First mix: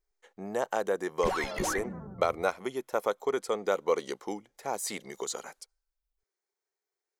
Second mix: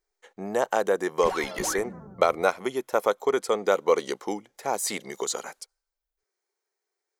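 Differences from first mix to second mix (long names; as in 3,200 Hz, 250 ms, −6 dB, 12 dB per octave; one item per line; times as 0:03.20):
speech +6.0 dB
master: add low-shelf EQ 120 Hz −5.5 dB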